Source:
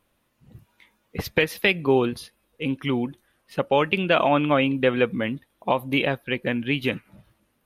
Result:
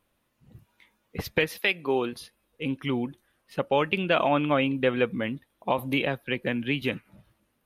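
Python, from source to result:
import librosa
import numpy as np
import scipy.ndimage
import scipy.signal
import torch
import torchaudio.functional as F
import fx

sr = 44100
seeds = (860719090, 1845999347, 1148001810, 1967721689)

y = fx.highpass(x, sr, hz=fx.line((1.57, 660.0), (2.19, 250.0)), slope=6, at=(1.57, 2.19), fade=0.02)
y = fx.band_squash(y, sr, depth_pct=40, at=(5.78, 6.82))
y = F.gain(torch.from_numpy(y), -3.5).numpy()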